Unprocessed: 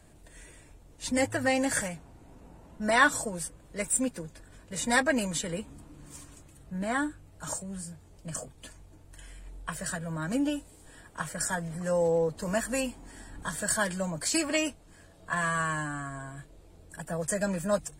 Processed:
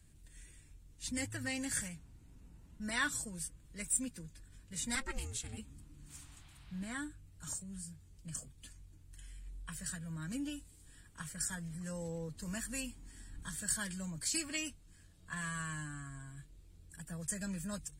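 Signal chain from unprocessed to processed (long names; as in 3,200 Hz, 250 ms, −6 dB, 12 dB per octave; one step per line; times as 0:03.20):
0:04.95–0:05.58: ring modulation 270 Hz
guitar amp tone stack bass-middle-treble 6-0-2
0:06.08–0:06.93: noise in a band 690–4,300 Hz −75 dBFS
level +9 dB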